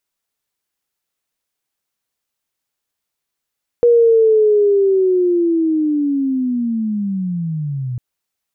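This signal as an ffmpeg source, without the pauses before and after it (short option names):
-f lavfi -i "aevalsrc='pow(10,(-7-13*t/4.15)/20)*sin(2*PI*(480*t-360*t*t/(2*4.15)))':d=4.15:s=44100"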